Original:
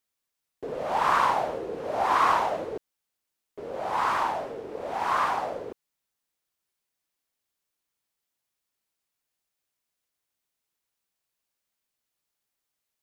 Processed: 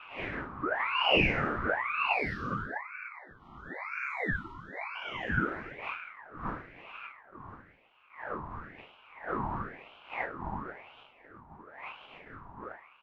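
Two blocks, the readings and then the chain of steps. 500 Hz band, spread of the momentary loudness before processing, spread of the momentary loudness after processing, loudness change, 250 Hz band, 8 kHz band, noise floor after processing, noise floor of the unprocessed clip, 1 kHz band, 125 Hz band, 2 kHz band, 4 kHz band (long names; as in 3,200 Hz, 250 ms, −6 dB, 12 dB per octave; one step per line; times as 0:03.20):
−5.0 dB, 16 LU, 21 LU, −6.5 dB, +4.5 dB, below −20 dB, −59 dBFS, −84 dBFS, −9.0 dB, +9.5 dB, +3.5 dB, +5.5 dB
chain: rippled gain that drifts along the octave scale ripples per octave 0.64, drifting +1.8 Hz, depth 24 dB
wind on the microphone 490 Hz −29 dBFS
low-shelf EQ 390 Hz −8 dB
time-frequency box erased 0:02.13–0:04.95, 870–2,300 Hz
single-tap delay 409 ms −20 dB
reverb whose tail is shaped and stops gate 380 ms falling, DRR 7 dB
in parallel at −5 dB: soft clipping −19.5 dBFS, distortion −8 dB
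on the sum: LFO wah 0.93 Hz 380–1,200 Hz, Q 2.3
low-shelf EQ 120 Hz +11 dB
ring modulator whose carrier an LFO sweeps 1,200 Hz, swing 60%, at 1 Hz
level −4 dB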